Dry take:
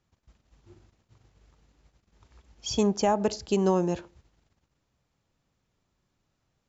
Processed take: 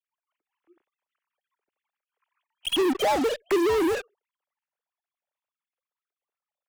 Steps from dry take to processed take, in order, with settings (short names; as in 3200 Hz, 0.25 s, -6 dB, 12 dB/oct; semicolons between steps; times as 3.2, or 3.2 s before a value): sine-wave speech; in parallel at -4.5 dB: fuzz box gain 48 dB, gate -44 dBFS; on the sum: gain -7 dB